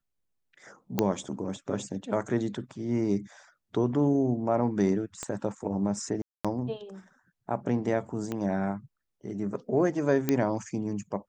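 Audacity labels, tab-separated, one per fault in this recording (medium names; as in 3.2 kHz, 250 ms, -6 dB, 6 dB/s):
0.990000	0.990000	pop -10 dBFS
5.230000	5.230000	pop -19 dBFS
6.220000	6.450000	dropout 226 ms
8.320000	8.320000	pop -19 dBFS
10.290000	10.290000	pop -11 dBFS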